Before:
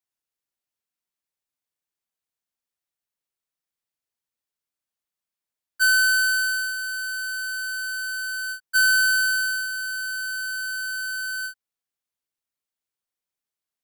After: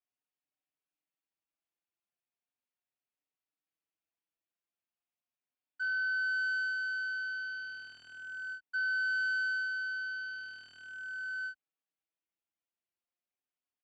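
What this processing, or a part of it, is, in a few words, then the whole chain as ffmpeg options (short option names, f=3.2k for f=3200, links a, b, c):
barber-pole flanger into a guitar amplifier: -filter_complex "[0:a]asplit=2[a][b];[b]adelay=5.1,afreqshift=0.37[c];[a][c]amix=inputs=2:normalize=1,asoftclip=type=tanh:threshold=-27.5dB,highpass=84,equalizer=f=300:t=q:w=4:g=7,equalizer=f=710:t=q:w=4:g=5,equalizer=f=2.6k:t=q:w=4:g=4,lowpass=f=4.2k:w=0.5412,lowpass=f=4.2k:w=1.3066,equalizer=f=4k:w=2.8:g=-5,volume=-3dB"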